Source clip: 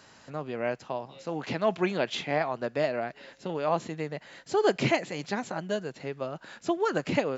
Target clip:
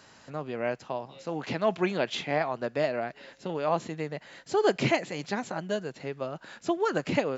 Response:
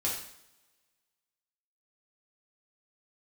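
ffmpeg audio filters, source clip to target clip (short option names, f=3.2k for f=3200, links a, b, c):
-af anull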